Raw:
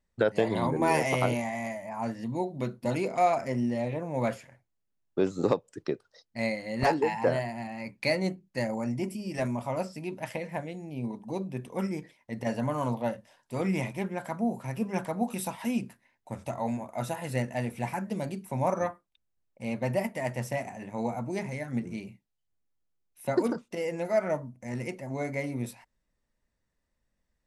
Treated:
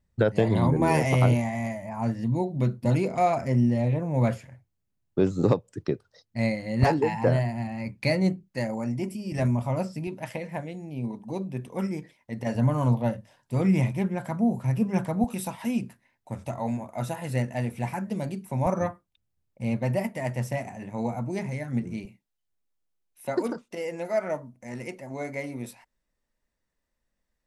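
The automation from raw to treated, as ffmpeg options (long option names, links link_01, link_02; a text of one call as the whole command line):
ffmpeg -i in.wav -af "asetnsamples=nb_out_samples=441:pad=0,asendcmd='8.43 equalizer g 4;9.32 equalizer g 12.5;10.07 equalizer g 4.5;12.55 equalizer g 13.5;15.24 equalizer g 5.5;18.66 equalizer g 12.5;19.77 equalizer g 6.5;22.05 equalizer g -5',equalizer=frequency=96:width_type=o:width=2.2:gain=13.5" out.wav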